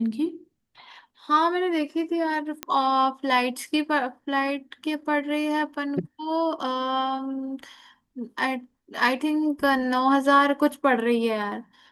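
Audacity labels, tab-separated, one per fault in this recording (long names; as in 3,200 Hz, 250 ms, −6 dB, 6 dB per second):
2.630000	2.630000	click −12 dBFS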